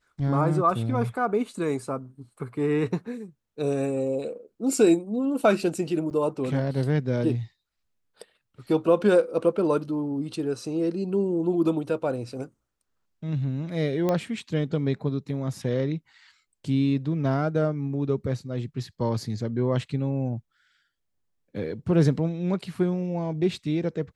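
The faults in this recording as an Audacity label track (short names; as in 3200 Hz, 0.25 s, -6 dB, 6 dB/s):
6.100000	6.110000	gap 9.2 ms
14.090000	14.090000	pop -13 dBFS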